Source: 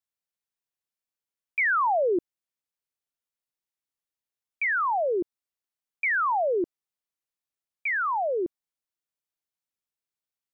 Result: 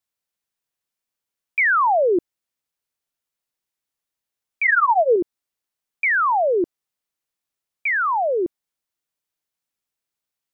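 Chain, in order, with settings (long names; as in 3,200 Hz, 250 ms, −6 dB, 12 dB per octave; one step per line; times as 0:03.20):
0:04.65–0:05.16: comb filter 4.3 ms, depth 86%
level +6 dB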